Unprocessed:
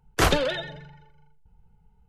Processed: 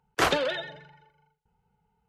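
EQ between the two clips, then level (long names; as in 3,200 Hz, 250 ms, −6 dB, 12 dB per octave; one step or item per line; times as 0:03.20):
high-pass filter 420 Hz 6 dB per octave
high-shelf EQ 5,500 Hz −8 dB
0.0 dB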